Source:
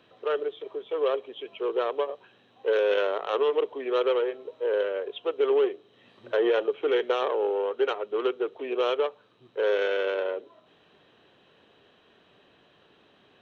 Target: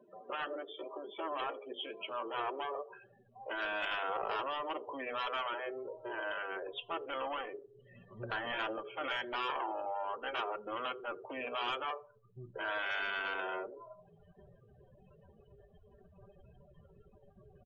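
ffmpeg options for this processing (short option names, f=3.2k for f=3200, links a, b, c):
-filter_complex "[0:a]aecho=1:1:5.1:0.32,asplit=2[a][b];[b]acompressor=threshold=-36dB:ratio=10,volume=0.5dB[c];[a][c]amix=inputs=2:normalize=0,afftfilt=real='re*lt(hypot(re,im),0.2)':imag='im*lt(hypot(re,im),0.2)':win_size=1024:overlap=0.75,asubboost=boost=10:cutoff=82,atempo=0.76,acrossover=split=550[d][e];[d]acrusher=bits=3:mode=log:mix=0:aa=0.000001[f];[f][e]amix=inputs=2:normalize=0,adynamicsmooth=sensitivity=2:basefreq=3.6k,bandreject=f=50:t=h:w=6,bandreject=f=100:t=h:w=6,bandreject=f=150:t=h:w=6,bandreject=f=200:t=h:w=6,bandreject=f=250:t=h:w=6,bandreject=f=300:t=h:w=6,bandreject=f=350:t=h:w=6,bandreject=f=400:t=h:w=6,bandreject=f=450:t=h:w=6,asoftclip=type=tanh:threshold=-28.5dB,asplit=2[g][h];[h]adelay=86,lowpass=f=2.3k:p=1,volume=-20.5dB,asplit=2[i][j];[j]adelay=86,lowpass=f=2.3k:p=1,volume=0.39,asplit=2[k][l];[l]adelay=86,lowpass=f=2.3k:p=1,volume=0.39[m];[g][i][k][m]amix=inputs=4:normalize=0,afftdn=nr=35:nf=-48"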